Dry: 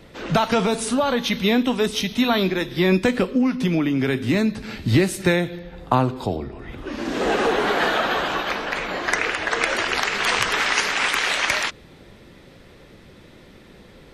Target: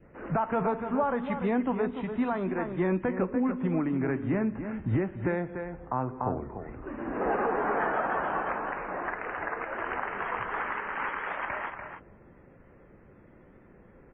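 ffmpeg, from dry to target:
-filter_complex "[0:a]asettb=1/sr,asplit=3[s0][s1][s2];[s0]atrim=end=10.644[s3];[s1]atrim=start=10.64:end=11.28,asetpts=PTS-STARTPTS,afade=t=in:d=0.004:c=qsin,afade=t=out:st=0.636:d=0.004:c=qsin,equalizer=f=720:t=o:w=0.2:g=-9[s4];[s2]atrim=start=11.276[s5];[s3][s4]acrossfade=d=0.004:c1=hsin:c2=qsin[s6];[s6][s5]acrossfade=d=0.004:c1=qsin:c2=hsin,asplit=2[s7][s8];[s8]adelay=291.5,volume=0.355,highshelf=f=4000:g=-6.56[s9];[s7][s9]amix=inputs=2:normalize=0,adynamicequalizer=threshold=0.0141:dfrequency=910:dqfactor=1.6:tfrequency=910:tqfactor=1.6:attack=5:release=100:ratio=0.375:range=2.5:mode=boostabove:tftype=bell,alimiter=limit=0.355:level=0:latency=1:release=339,lowpass=f=1800:w=0.5412,lowpass=f=1800:w=1.3066,volume=0.398" -ar 48000 -c:a wmav2 -b:a 32k

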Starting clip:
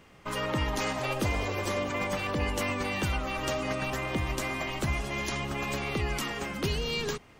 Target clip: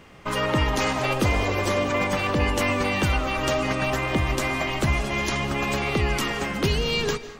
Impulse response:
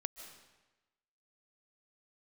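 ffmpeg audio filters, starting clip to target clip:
-filter_complex "[0:a]asplit=2[s0][s1];[1:a]atrim=start_sample=2205,afade=t=out:st=0.3:d=0.01,atrim=end_sample=13671,highshelf=f=8700:g=-9.5[s2];[s1][s2]afir=irnorm=-1:irlink=0,volume=1.68[s3];[s0][s3]amix=inputs=2:normalize=0"

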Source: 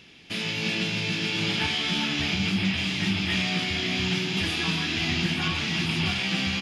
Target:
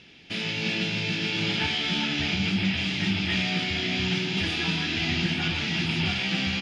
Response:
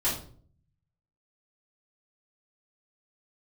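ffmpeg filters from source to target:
-af "lowpass=6000,bandreject=f=1100:w=6.6"

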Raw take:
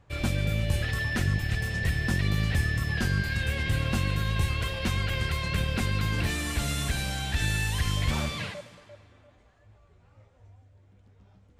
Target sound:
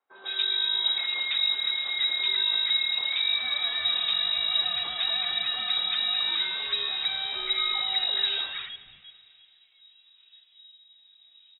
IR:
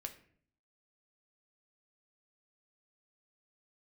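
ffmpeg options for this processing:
-filter_complex "[0:a]lowpass=f=3300:t=q:w=0.5098,lowpass=f=3300:t=q:w=0.6013,lowpass=f=3300:t=q:w=0.9,lowpass=f=3300:t=q:w=2.563,afreqshift=-3900,acrossover=split=200|1200[s0][s1][s2];[s2]adelay=150[s3];[s0]adelay=460[s4];[s4][s1][s3]amix=inputs=3:normalize=0"

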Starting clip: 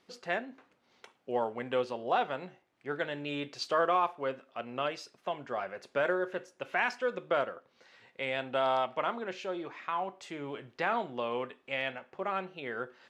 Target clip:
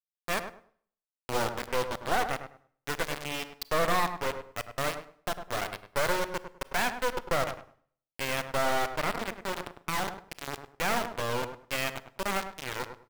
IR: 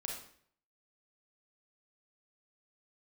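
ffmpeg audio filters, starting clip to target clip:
-filter_complex "[0:a]highpass=f=170:p=1,acrossover=split=3500[s0][s1];[s0]aeval=exprs='0.15*(cos(1*acos(clip(val(0)/0.15,-1,1)))-cos(1*PI/2))+0.0422*(cos(2*acos(clip(val(0)/0.15,-1,1)))-cos(2*PI/2))+0.0335*(cos(3*acos(clip(val(0)/0.15,-1,1)))-cos(3*PI/2))+0.0299*(cos(5*acos(clip(val(0)/0.15,-1,1)))-cos(5*PI/2))+0.0168*(cos(6*acos(clip(val(0)/0.15,-1,1)))-cos(6*PI/2))':c=same[s2];[s1]adynamicsmooth=sensitivity=6:basefreq=5700[s3];[s2][s3]amix=inputs=2:normalize=0,acrusher=bits=4:mix=0:aa=0.000001,asplit=2[s4][s5];[s5]adelay=102,lowpass=f=1400:p=1,volume=0.398,asplit=2[s6][s7];[s7]adelay=102,lowpass=f=1400:p=1,volume=0.24,asplit=2[s8][s9];[s9]adelay=102,lowpass=f=1400:p=1,volume=0.24[s10];[s4][s6][s8][s10]amix=inputs=4:normalize=0,asplit=2[s11][s12];[1:a]atrim=start_sample=2205[s13];[s12][s13]afir=irnorm=-1:irlink=0,volume=0.2[s14];[s11][s14]amix=inputs=2:normalize=0,adynamicequalizer=threshold=0.00398:dfrequency=5000:dqfactor=0.7:tfrequency=5000:tqfactor=0.7:attack=5:release=100:ratio=0.375:range=3:mode=cutabove:tftype=highshelf"

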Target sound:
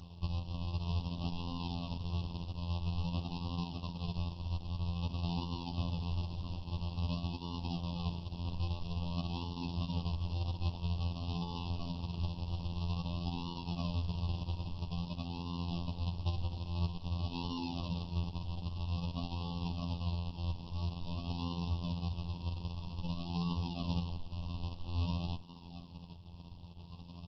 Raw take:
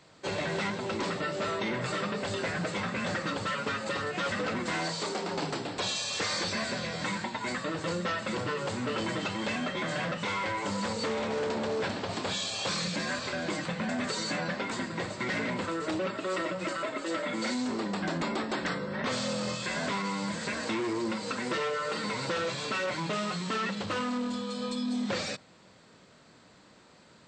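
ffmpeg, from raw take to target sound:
-filter_complex "[0:a]aresample=11025,acrusher=samples=34:mix=1:aa=0.000001:lfo=1:lforange=34:lforate=0.5,aresample=44100,acompressor=threshold=0.00794:ratio=16,asplit=2[s0][s1];[s1]adelay=71,lowpass=f=980:p=1,volume=0.126,asplit=2[s2][s3];[s3]adelay=71,lowpass=f=980:p=1,volume=0.23[s4];[s0][s2][s4]amix=inputs=3:normalize=0,alimiter=level_in=4.22:limit=0.0631:level=0:latency=1:release=256,volume=0.237,afftfilt=real='hypot(re,im)*cos(PI*b)':imag='0':win_size=2048:overlap=0.75,equalizer=f=390:t=o:w=1.1:g=-14.5,afftfilt=real='re*(1-between(b*sr/4096,1200,2500))':imag='im*(1-between(b*sr/4096,1200,2500))':win_size=4096:overlap=0.75,volume=6.68" -ar 48000 -c:a libopus -b:a 12k

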